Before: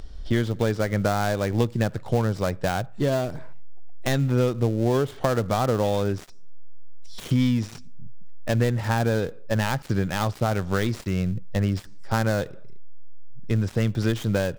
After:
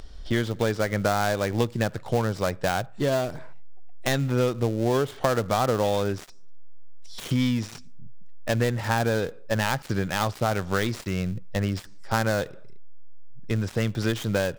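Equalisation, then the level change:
low-shelf EQ 390 Hz −6 dB
+2.0 dB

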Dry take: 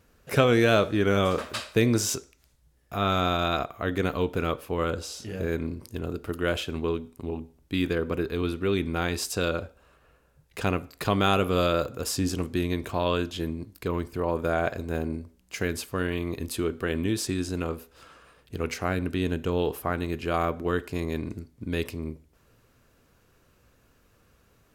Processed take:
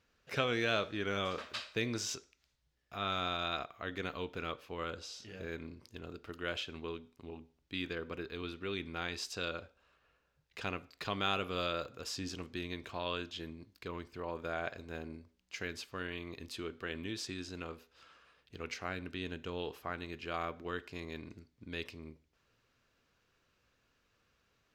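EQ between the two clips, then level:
high-frequency loss of the air 210 metres
first-order pre-emphasis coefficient 0.9
low-shelf EQ 130 Hz −3 dB
+5.5 dB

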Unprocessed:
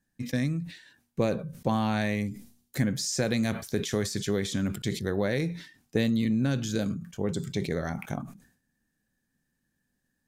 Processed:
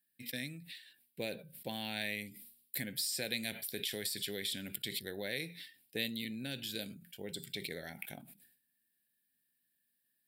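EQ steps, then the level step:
spectral tilt +4.5 dB per octave
phaser with its sweep stopped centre 2,800 Hz, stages 4
−6.5 dB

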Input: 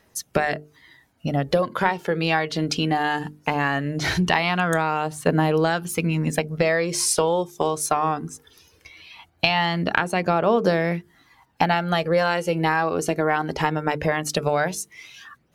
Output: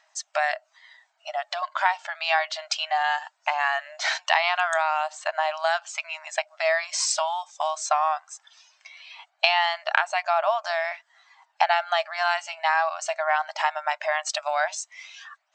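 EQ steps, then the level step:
linear-phase brick-wall band-pass 590–8,300 Hz
0.0 dB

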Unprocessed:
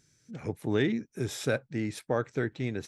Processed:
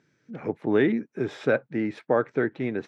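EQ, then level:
high-pass filter 210 Hz 12 dB per octave
low-pass filter 2,000 Hz 12 dB per octave
+7.0 dB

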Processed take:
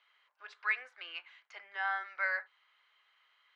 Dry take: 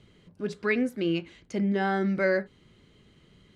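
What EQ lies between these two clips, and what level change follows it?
high-pass filter 910 Hz 24 dB per octave
resonant band-pass 1,300 Hz, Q 0.66
high-frequency loss of the air 93 metres
0.0 dB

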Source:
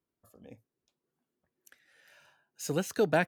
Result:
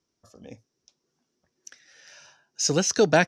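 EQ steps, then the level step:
low-pass with resonance 5,700 Hz, resonance Q 7.2
+7.0 dB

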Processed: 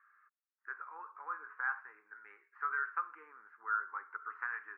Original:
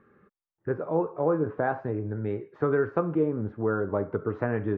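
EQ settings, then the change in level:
four-pole ladder high-pass 1,100 Hz, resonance 40%
high-frequency loss of the air 240 metres
phaser with its sweep stopped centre 1,500 Hz, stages 4
+6.0 dB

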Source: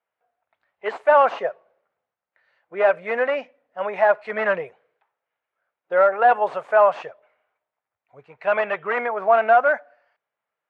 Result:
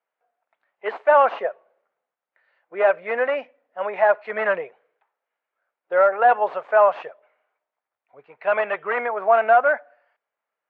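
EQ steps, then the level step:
band-pass filter 250–3,400 Hz
0.0 dB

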